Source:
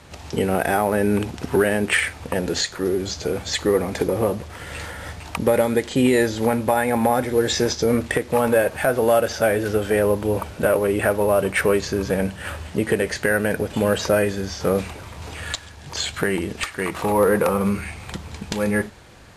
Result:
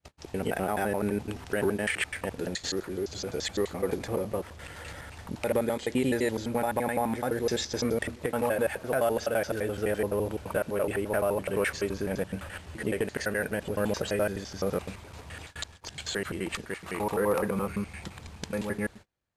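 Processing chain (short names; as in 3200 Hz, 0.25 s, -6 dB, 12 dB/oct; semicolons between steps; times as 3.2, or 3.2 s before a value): slices in reverse order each 85 ms, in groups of 2; gate -37 dBFS, range -31 dB; gain -9 dB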